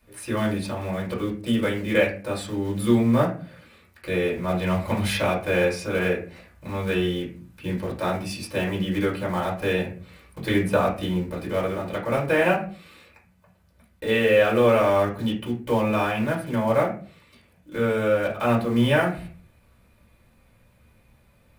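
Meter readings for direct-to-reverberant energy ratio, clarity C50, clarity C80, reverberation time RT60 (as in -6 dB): -3.5 dB, 8.5 dB, 14.0 dB, 0.40 s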